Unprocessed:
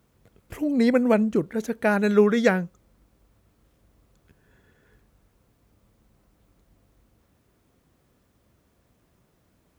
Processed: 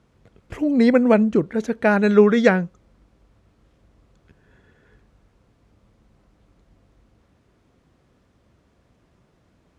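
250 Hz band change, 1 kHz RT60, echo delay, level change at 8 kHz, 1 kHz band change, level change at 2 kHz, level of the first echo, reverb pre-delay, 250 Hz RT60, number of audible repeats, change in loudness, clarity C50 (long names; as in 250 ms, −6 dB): +4.5 dB, no reverb audible, no echo audible, can't be measured, +4.0 dB, +4.0 dB, no echo audible, no reverb audible, no reverb audible, no echo audible, +4.5 dB, no reverb audible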